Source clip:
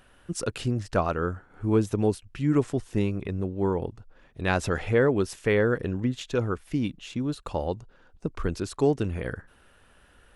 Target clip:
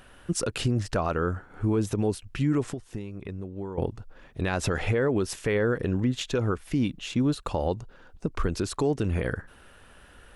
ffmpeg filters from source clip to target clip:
-filter_complex "[0:a]asettb=1/sr,asplit=3[s0][s1][s2];[s0]atrim=end=2.644[s3];[s1]atrim=start=2.64:end=3.78,asetpts=PTS-STARTPTS,afade=t=in:d=0.004:c=qsin,afade=t=out:st=1.136:d=0.004:c=qsin,acompressor=threshold=0.0141:ratio=20[s4];[s2]atrim=start=3.776[s5];[s3][s4]acrossfade=d=0.004:c1=hsin:c2=qsin[s6];[s6][s5]acrossfade=d=0.004:c1=qsin:c2=hsin,alimiter=limit=0.0841:level=0:latency=1:release=114,volume=1.88"

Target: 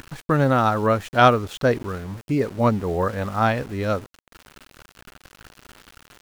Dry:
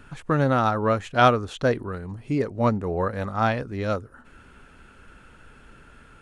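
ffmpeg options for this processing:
-af "acompressor=mode=upward:threshold=0.0126:ratio=2.5,aeval=exprs='val(0)*gte(abs(val(0)),0.0112)':c=same,volume=1.33"

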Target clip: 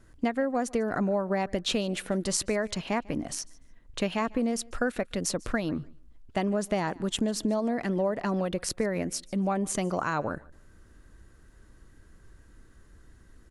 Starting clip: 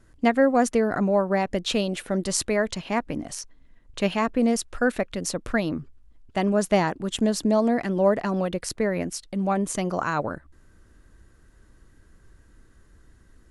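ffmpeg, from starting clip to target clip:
-af "acompressor=threshold=0.0631:ratio=6,aecho=1:1:147|294:0.0631|0.0126"

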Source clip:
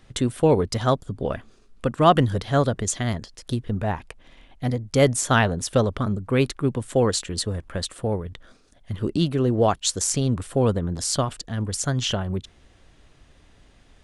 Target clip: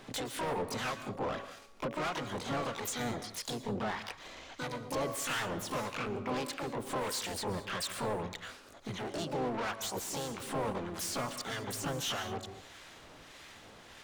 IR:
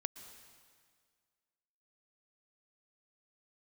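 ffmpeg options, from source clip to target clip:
-filter_complex "[0:a]bandreject=f=281.5:t=h:w=4,bandreject=f=563:t=h:w=4,acompressor=threshold=0.0251:ratio=4,asplit=3[s0][s1][s2];[s1]asetrate=52444,aresample=44100,atempo=0.840896,volume=0.562[s3];[s2]asetrate=88200,aresample=44100,atempo=0.5,volume=0.708[s4];[s0][s3][s4]amix=inputs=3:normalize=0,asplit=2[s5][s6];[s6]highpass=f=720:p=1,volume=17.8,asoftclip=type=tanh:threshold=0.178[s7];[s5][s7]amix=inputs=2:normalize=0,lowpass=f=5400:p=1,volume=0.501[s8];[1:a]atrim=start_sample=2205,afade=t=out:st=0.28:d=0.01,atrim=end_sample=12789[s9];[s8][s9]afir=irnorm=-1:irlink=0,acrossover=split=1100[s10][s11];[s10]aeval=exprs='val(0)*(1-0.5/2+0.5/2*cos(2*PI*1.6*n/s))':c=same[s12];[s11]aeval=exprs='val(0)*(1-0.5/2-0.5/2*cos(2*PI*1.6*n/s))':c=same[s13];[s12][s13]amix=inputs=2:normalize=0,volume=0.398"

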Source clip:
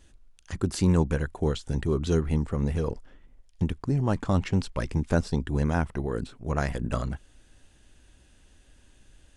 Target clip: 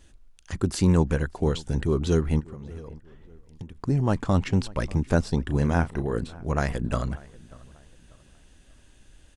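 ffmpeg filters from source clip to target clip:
-filter_complex "[0:a]asplit=3[s0][s1][s2];[s0]afade=t=out:st=2.39:d=0.02[s3];[s1]acompressor=threshold=0.01:ratio=6,afade=t=in:st=2.39:d=0.02,afade=t=out:st=3.74:d=0.02[s4];[s2]afade=t=in:st=3.74:d=0.02[s5];[s3][s4][s5]amix=inputs=3:normalize=0,asettb=1/sr,asplit=3[s6][s7][s8];[s6]atrim=end=5.434[s9];[s7]atrim=start=5.43:end=6.19,asetpts=PTS-STARTPTS,afade=t=in:d=0.004:c=qsin,afade=t=out:st=0.756:d=0.004:c=qsin,asplit=2[s10][s11];[s11]adelay=35,volume=0.266[s12];[s10][s12]amix=inputs=2:normalize=0,atrim=end_sample=33516[s13];[s8]atrim=start=6.186[s14];[s9][s13]acrossfade=d=0.004:c1=hsin:c2=qsin[s15];[s15][s14]acrossfade=d=0.004:c1=qsin:c2=hsin,asplit=2[s16][s17];[s17]adelay=589,lowpass=f=2500:p=1,volume=0.0841,asplit=2[s18][s19];[s19]adelay=589,lowpass=f=2500:p=1,volume=0.37,asplit=2[s20][s21];[s21]adelay=589,lowpass=f=2500:p=1,volume=0.37[s22];[s16][s18][s20][s22]amix=inputs=4:normalize=0,volume=1.26"

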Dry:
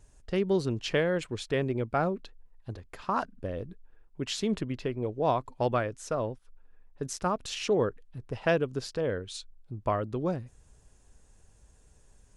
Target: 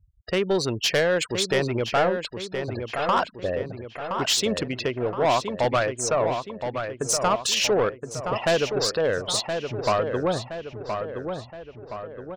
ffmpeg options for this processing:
-filter_complex "[0:a]highpass=61,afftfilt=real='re*gte(hypot(re,im),0.00501)':imag='im*gte(hypot(re,im),0.00501)':win_size=1024:overlap=0.75,firequalizer=gain_entry='entry(230,0);entry(610,10);entry(5200,15)':delay=0.05:min_phase=1,asplit=2[s0][s1];[s1]acompressor=threshold=0.0224:ratio=6,volume=0.794[s2];[s0][s2]amix=inputs=2:normalize=0,asoftclip=type=tanh:threshold=0.168,asplit=2[s3][s4];[s4]adelay=1020,lowpass=f=3000:p=1,volume=0.473,asplit=2[s5][s6];[s6]adelay=1020,lowpass=f=3000:p=1,volume=0.52,asplit=2[s7][s8];[s8]adelay=1020,lowpass=f=3000:p=1,volume=0.52,asplit=2[s9][s10];[s10]adelay=1020,lowpass=f=3000:p=1,volume=0.52,asplit=2[s11][s12];[s12]adelay=1020,lowpass=f=3000:p=1,volume=0.52,asplit=2[s13][s14];[s14]adelay=1020,lowpass=f=3000:p=1,volume=0.52[s15];[s5][s7][s9][s11][s13][s15]amix=inputs=6:normalize=0[s16];[s3][s16]amix=inputs=2:normalize=0"

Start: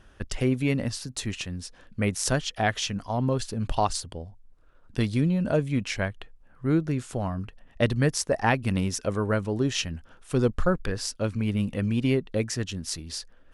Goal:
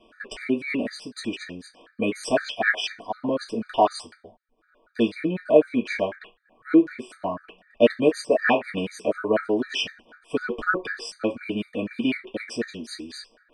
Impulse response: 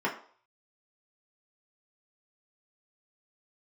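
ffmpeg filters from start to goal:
-filter_complex "[1:a]atrim=start_sample=2205,asetrate=70560,aresample=44100[s0];[0:a][s0]afir=irnorm=-1:irlink=0,afftfilt=real='re*gt(sin(2*PI*4*pts/sr)*(1-2*mod(floor(b*sr/1024/1200),2)),0)':imag='im*gt(sin(2*PI*4*pts/sr)*(1-2*mod(floor(b*sr/1024/1200),2)),0)':win_size=1024:overlap=0.75"

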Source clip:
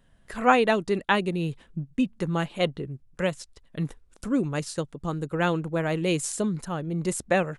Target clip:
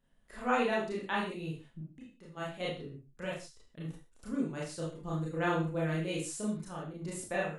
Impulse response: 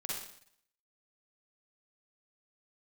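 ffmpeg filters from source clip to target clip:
-filter_complex "[0:a]asplit=3[s0][s1][s2];[s0]afade=t=out:st=1.8:d=0.02[s3];[s1]acompressor=threshold=0.0112:ratio=5,afade=t=in:st=1.8:d=0.02,afade=t=out:st=2.36:d=0.02[s4];[s2]afade=t=in:st=2.36:d=0.02[s5];[s3][s4][s5]amix=inputs=3:normalize=0,asettb=1/sr,asplit=3[s6][s7][s8];[s6]atrim=end=4.794[s9];[s7]atrim=start=4.79:end=6,asetpts=PTS-STARTPTS,afade=t=in:d=0.004:c=qsin,afade=t=out:st=1.206:d=0.004:c=qsin,aecho=1:1:5.8:0.8,atrim=end_sample=53361[s10];[s8]atrim=start=5.996[s11];[s9][s10]acrossfade=d=0.004:c1=hsin:c2=qsin[s12];[s12][s11]acrossfade=d=0.004:c1=qsin:c2=hsin[s13];[1:a]atrim=start_sample=2205,afade=t=out:st=0.34:d=0.01,atrim=end_sample=15435,asetrate=70560,aresample=44100[s14];[s13][s14]afir=irnorm=-1:irlink=0,volume=0.473"

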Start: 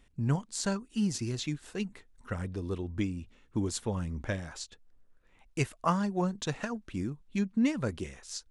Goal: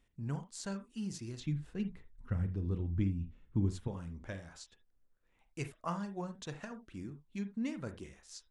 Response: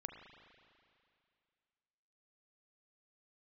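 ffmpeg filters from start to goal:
-filter_complex "[0:a]asettb=1/sr,asplit=3[s0][s1][s2];[s0]atrim=end=1.404[s3];[s1]atrim=start=1.4:end=3.88,asetpts=PTS-STARTPTS,afade=t=in:d=0.004:c=qsin,afade=t=out:st=2.476:d=0.004:c=qsin,bass=f=250:g=14,treble=f=4000:g=-8[s4];[s2]atrim=start=3.876[s5];[s3][s4]acrossfade=d=0.004:c1=hsin:c2=qsin[s6];[s6][s5]acrossfade=d=0.004:c1=qsin:c2=hsin[s7];[1:a]atrim=start_sample=2205,afade=t=out:st=0.13:d=0.01,atrim=end_sample=6174[s8];[s7][s8]afir=irnorm=-1:irlink=0,volume=0.531"

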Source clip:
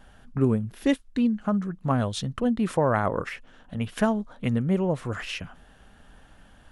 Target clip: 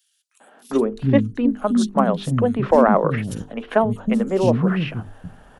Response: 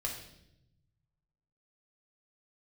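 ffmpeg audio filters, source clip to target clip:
-filter_complex "[0:a]atempo=1.2,acrossover=split=170|1100|2100[s0][s1][s2][s3];[s1]acontrast=80[s4];[s0][s4][s2][s3]amix=inputs=4:normalize=0,bandreject=f=50:t=h:w=6,bandreject=f=100:t=h:w=6,bandreject=f=150:t=h:w=6,bandreject=f=200:t=h:w=6,bandreject=f=250:t=h:w=6,bandreject=f=300:t=h:w=6,bandreject=f=350:t=h:w=6,bandreject=f=400:t=h:w=6,bandreject=f=450:t=h:w=6,acrossover=split=260|3600[s5][s6][s7];[s6]adelay=400[s8];[s5]adelay=720[s9];[s9][s8][s7]amix=inputs=3:normalize=0,volume=1.58"

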